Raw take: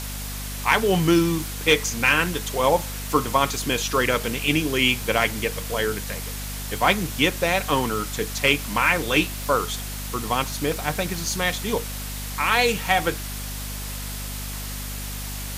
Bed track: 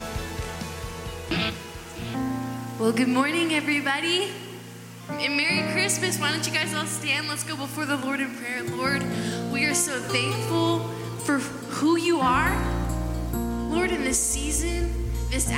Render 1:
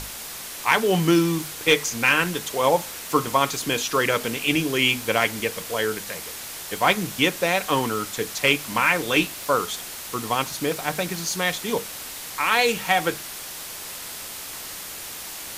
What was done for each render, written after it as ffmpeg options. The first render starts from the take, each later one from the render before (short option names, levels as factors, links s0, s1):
-af "bandreject=f=50:t=h:w=6,bandreject=f=100:t=h:w=6,bandreject=f=150:t=h:w=6,bandreject=f=200:t=h:w=6,bandreject=f=250:t=h:w=6"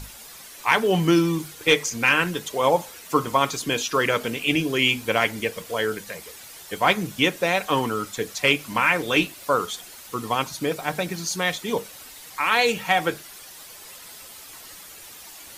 -af "afftdn=nr=10:nf=-36"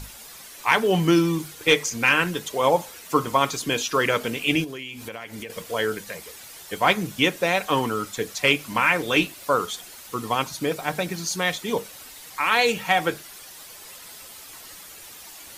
-filter_complex "[0:a]asettb=1/sr,asplit=3[s0][s1][s2];[s0]atrim=end=4.644[s3];[s1]atrim=start=4.64:end=5.5,asetpts=PTS-STARTPTS,afade=t=in:d=0.004:c=qsin,afade=t=out:st=0.856:d=0.004:c=qsin,acompressor=threshold=0.0282:ratio=10:attack=3.2:release=140:knee=1:detection=peak[s4];[s2]atrim=start=5.496[s5];[s3][s4]acrossfade=d=0.004:c1=hsin:c2=qsin[s6];[s6][s5]acrossfade=d=0.004:c1=qsin:c2=hsin"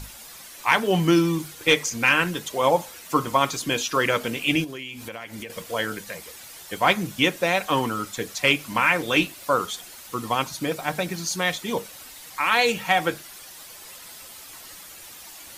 -af "bandreject=f=430:w=12"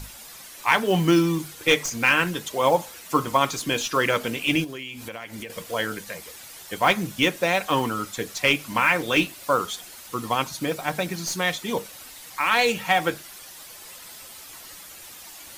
-filter_complex "[0:a]acrossover=split=3000[s0][s1];[s1]aeval=exprs='clip(val(0),-1,0.0422)':c=same[s2];[s0][s2]amix=inputs=2:normalize=0,acrusher=bits=7:mode=log:mix=0:aa=0.000001"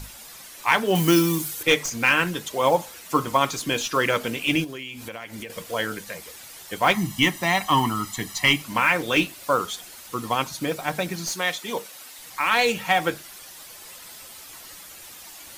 -filter_complex "[0:a]asettb=1/sr,asplit=3[s0][s1][s2];[s0]atrim=end=0.954[s3];[s1]atrim=start=0.95:end=1.63,asetpts=PTS-STARTPTS,afade=t=in:d=0.004:c=qsin,afade=t=out:st=0.676:d=0.004:c=qsin,aemphasis=mode=production:type=50kf[s4];[s2]atrim=start=1.626[s5];[s3][s4]acrossfade=d=0.004:c1=hsin:c2=qsin[s6];[s6][s5]acrossfade=d=0.004:c1=qsin:c2=hsin,asettb=1/sr,asplit=3[s7][s8][s9];[s7]atrim=end=6.944[s10];[s8]atrim=start=6.94:end=8.62,asetpts=PTS-STARTPTS,afade=t=in:d=0.004:c=qsin,afade=t=out:st=1.676:d=0.004:c=qsin,aecho=1:1:1:0.84,atrim=end_sample=74088[s11];[s9]atrim=start=8.616[s12];[s10][s11]acrossfade=d=0.004:c1=hsin:c2=qsin[s13];[s13][s12]acrossfade=d=0.004:c1=qsin:c2=hsin,asettb=1/sr,asplit=3[s14][s15][s16];[s14]atrim=end=11.304[s17];[s15]atrim=start=11.3:end=12.19,asetpts=PTS-STARTPTS,afade=t=in:d=0.004:c=qsin,afade=t=out:st=0.886:d=0.004:c=qsin,highpass=f=390:p=1[s18];[s16]atrim=start=12.186[s19];[s17][s18]acrossfade=d=0.004:c1=hsin:c2=qsin[s20];[s20][s19]acrossfade=d=0.004:c1=qsin:c2=hsin"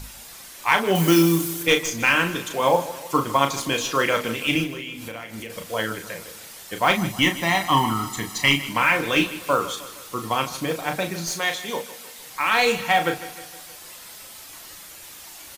-filter_complex "[0:a]asplit=2[s0][s1];[s1]adelay=36,volume=0.447[s2];[s0][s2]amix=inputs=2:normalize=0,aecho=1:1:155|310|465|620|775:0.168|0.0907|0.049|0.0264|0.0143"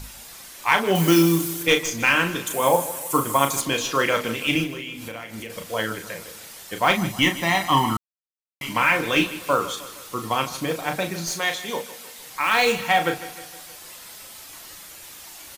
-filter_complex "[0:a]asettb=1/sr,asplit=3[s0][s1][s2];[s0]atrim=end=2.474[s3];[s1]atrim=start=2.47:end=3.61,asetpts=PTS-STARTPTS,afade=t=in:d=0.004:c=qsin,afade=t=out:st=1.136:d=0.004:c=qsin,highshelf=f=6700:t=q:w=1.5:g=9.5[s4];[s2]atrim=start=3.606[s5];[s3][s4]acrossfade=d=0.004:c1=hsin:c2=qsin[s6];[s6][s5]acrossfade=d=0.004:c1=qsin:c2=hsin,asettb=1/sr,asplit=3[s7][s8][s9];[s7]atrim=end=12.434[s10];[s8]atrim=start=12.43:end=12.9,asetpts=PTS-STARTPTS,afade=t=in:d=0.004:c=qsin,afade=t=out:st=0.466:d=0.004:c=qsin,acrusher=bits=5:mode=log:mix=0:aa=0.000001[s11];[s9]atrim=start=12.896[s12];[s10][s11]acrossfade=d=0.004:c1=hsin:c2=qsin[s13];[s13][s12]acrossfade=d=0.004:c1=qsin:c2=hsin,asplit=3[s14][s15][s16];[s14]atrim=end=7.97,asetpts=PTS-STARTPTS,afade=t=out:st=7.966:d=0.004:c=hsin[s17];[s15]atrim=start=7.97:end=8.61,asetpts=PTS-STARTPTS,volume=0[s18];[s16]atrim=start=8.61,asetpts=PTS-STARTPTS,afade=t=in:d=0.004:c=hsin[s19];[s17][s18][s19]concat=n=3:v=0:a=1"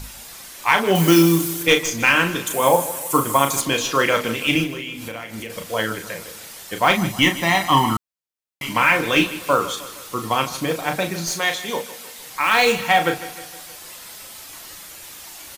-af "volume=1.41,alimiter=limit=0.794:level=0:latency=1"